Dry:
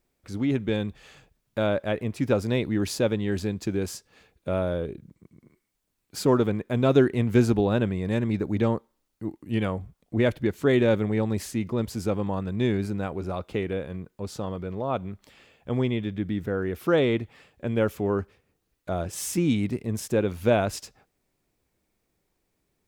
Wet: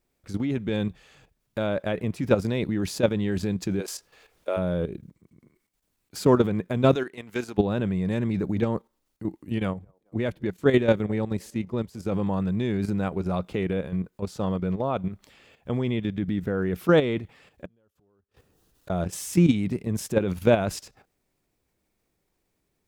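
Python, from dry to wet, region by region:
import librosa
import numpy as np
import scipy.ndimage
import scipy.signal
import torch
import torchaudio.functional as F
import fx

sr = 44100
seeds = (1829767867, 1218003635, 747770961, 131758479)

y = fx.highpass(x, sr, hz=360.0, slope=24, at=(3.79, 4.56), fade=0.02)
y = fx.dmg_noise_colour(y, sr, seeds[0], colour='pink', level_db=-70.0, at=(3.79, 4.56), fade=0.02)
y = fx.chain(y, sr, fx.highpass(hz=950.0, slope=6),
    fx.upward_expand(threshold_db=-35.0, expansion=1.5), at=(6.95, 7.58))
y = fx.chain(y, sr, fx.echo_wet_bandpass(ms=214, feedback_pct=50, hz=570.0, wet_db=-23.0),
    fx.upward_expand(threshold_db=-40.0, expansion=1.5), at=(9.58, 12.12))
y = fx.chain(y, sr, fx.law_mismatch(coded='mu'),
    fx.peak_eq(hz=2200.0, db=-9.5, octaves=0.34),
    fx.gate_flip(shuts_db=-32.0, range_db=-41), at=(17.65, 18.9))
y = fx.dynamic_eq(y, sr, hz=180.0, q=6.6, threshold_db=-48.0, ratio=4.0, max_db=8)
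y = fx.level_steps(y, sr, step_db=10)
y = y * 10.0 ** (4.5 / 20.0)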